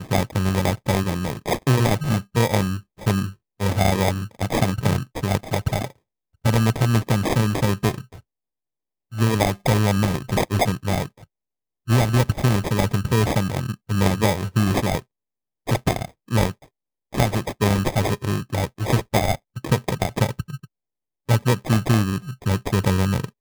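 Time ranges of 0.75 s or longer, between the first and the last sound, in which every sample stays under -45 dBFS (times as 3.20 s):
8.20–9.12 s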